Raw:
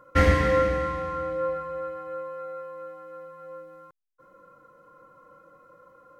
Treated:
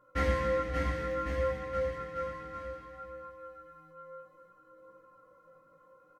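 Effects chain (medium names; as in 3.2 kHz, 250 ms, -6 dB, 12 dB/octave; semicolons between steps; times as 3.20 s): bouncing-ball echo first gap 580 ms, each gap 0.9×, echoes 5; chorus voices 2, 0.61 Hz, delay 17 ms, depth 2 ms; 0.97–1.58 s: crackle 350 per s -50 dBFS; trim -7 dB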